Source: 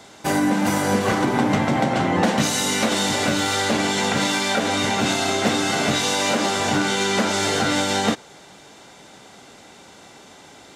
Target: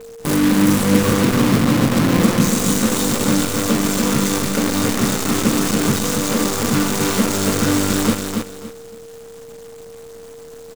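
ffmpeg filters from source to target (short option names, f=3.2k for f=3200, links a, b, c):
-af "firequalizer=gain_entry='entry(310,0);entry(490,-1);entry(760,-29);entry(1100,-4);entry(1800,-20);entry(7500,-5)':delay=0.05:min_phase=1,acrusher=bits=5:dc=4:mix=0:aa=0.000001,equalizer=f=390:t=o:w=0.53:g=-5.5,aeval=exprs='val(0)+0.00891*sin(2*PI*460*n/s)':c=same,aecho=1:1:282|564|846:0.562|0.141|0.0351,volume=6.5dB"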